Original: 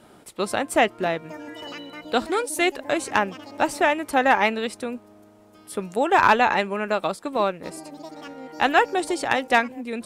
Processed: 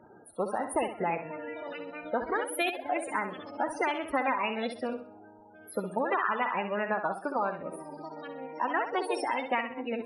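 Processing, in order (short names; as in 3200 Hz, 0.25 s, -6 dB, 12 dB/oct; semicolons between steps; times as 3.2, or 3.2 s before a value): compressor 6:1, threshold -22 dBFS, peak gain reduction 10.5 dB; loudest bins only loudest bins 32; flutter echo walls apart 11 m, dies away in 0.43 s; formant shift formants +3 st; gain -3 dB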